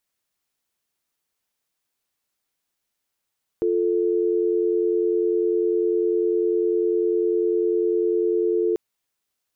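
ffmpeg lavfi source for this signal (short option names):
-f lavfi -i "aevalsrc='0.0891*(sin(2*PI*350*t)+sin(2*PI*440*t))':d=5.14:s=44100"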